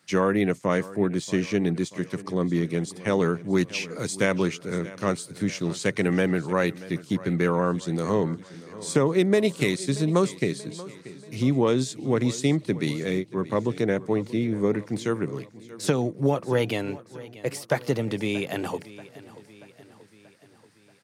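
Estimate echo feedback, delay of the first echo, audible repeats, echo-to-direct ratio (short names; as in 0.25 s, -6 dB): 55%, 0.633 s, 4, -16.5 dB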